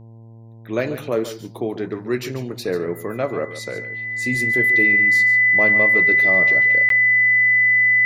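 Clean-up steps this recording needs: de-hum 113.6 Hz, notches 9; band-stop 2 kHz, Q 30; interpolate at 6.89 s, 13 ms; inverse comb 142 ms -12.5 dB

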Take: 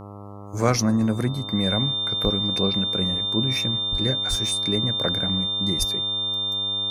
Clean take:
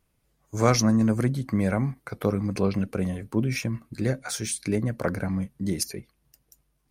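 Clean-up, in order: de-hum 101.2 Hz, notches 13; band-stop 3.6 kHz, Q 30; de-plosive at 2.23/3.91/4.29/5.78 s

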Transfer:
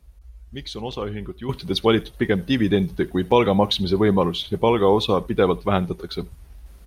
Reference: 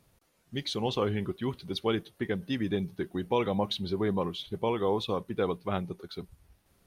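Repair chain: interpolate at 0.92/3.31 s, 5 ms; noise print and reduce 22 dB; inverse comb 76 ms -24 dB; gain correction -11 dB, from 1.49 s

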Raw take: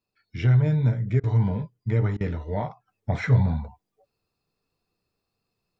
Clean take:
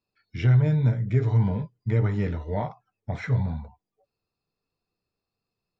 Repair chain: interpolate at 1.20/2.17 s, 35 ms; gain correction -5 dB, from 2.88 s

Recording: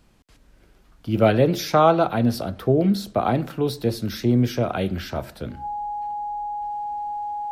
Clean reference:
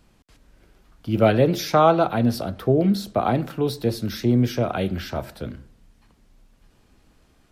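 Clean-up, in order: band-stop 830 Hz, Q 30

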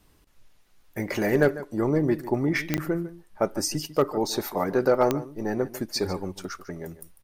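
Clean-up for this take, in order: clip repair -10 dBFS; de-click; interpolate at 2.77 s, 9.4 ms; inverse comb 148 ms -15.5 dB

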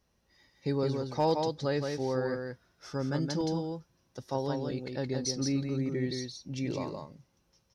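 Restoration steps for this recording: clip repair -18 dBFS; interpolate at 3.41 s, 1.6 ms; inverse comb 169 ms -4.5 dB

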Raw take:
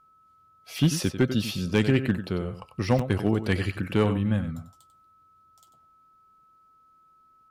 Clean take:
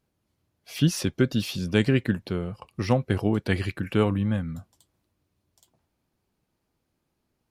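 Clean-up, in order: clip repair -12.5 dBFS; band-stop 1.3 kHz, Q 30; interpolate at 2.99 s, 4.2 ms; inverse comb 94 ms -11 dB

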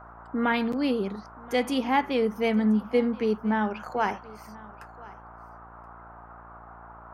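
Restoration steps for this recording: de-hum 57.7 Hz, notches 15; noise print and reduce 25 dB; inverse comb 1027 ms -22 dB

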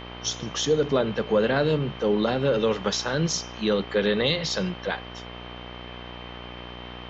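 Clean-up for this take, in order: de-hum 60.4 Hz, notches 21; band-stop 3.1 kHz, Q 30; noise print and reduce 30 dB

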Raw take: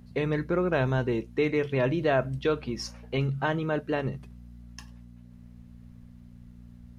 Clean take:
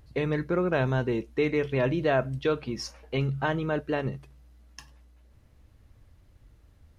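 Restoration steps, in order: de-hum 59.5 Hz, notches 4

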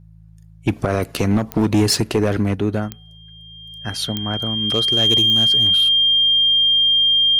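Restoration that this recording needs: clip repair -10.5 dBFS; de-click; de-hum 54 Hz, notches 3; band-stop 3.2 kHz, Q 30

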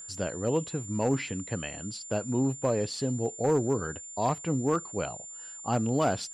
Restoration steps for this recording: clip repair -18 dBFS; band-stop 7.2 kHz, Q 30

